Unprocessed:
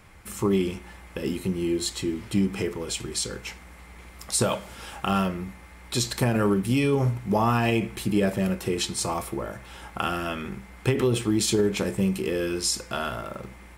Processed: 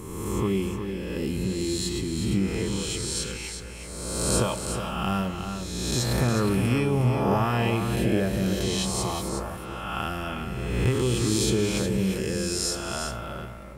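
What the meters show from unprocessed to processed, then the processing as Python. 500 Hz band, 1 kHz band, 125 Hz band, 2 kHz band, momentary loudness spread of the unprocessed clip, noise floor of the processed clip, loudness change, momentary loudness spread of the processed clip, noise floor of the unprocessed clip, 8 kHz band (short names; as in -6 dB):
-1.0 dB, -1.0 dB, +2.5 dB, -0.5 dB, 14 LU, -37 dBFS, -0.5 dB, 9 LU, -47 dBFS, +1.0 dB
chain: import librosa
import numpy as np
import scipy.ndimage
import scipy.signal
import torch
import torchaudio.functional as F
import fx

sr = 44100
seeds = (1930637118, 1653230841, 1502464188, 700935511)

y = fx.spec_swells(x, sr, rise_s=1.54)
y = fx.low_shelf(y, sr, hz=120.0, db=11.0)
y = y + 10.0 ** (-7.5 / 20.0) * np.pad(y, (int(362 * sr / 1000.0), 0))[:len(y)]
y = F.gain(torch.from_numpy(y), -6.0).numpy()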